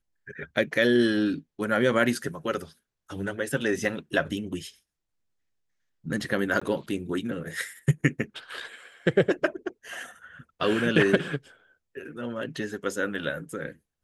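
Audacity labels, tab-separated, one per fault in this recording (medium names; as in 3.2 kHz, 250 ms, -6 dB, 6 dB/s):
6.600000	6.620000	dropout 15 ms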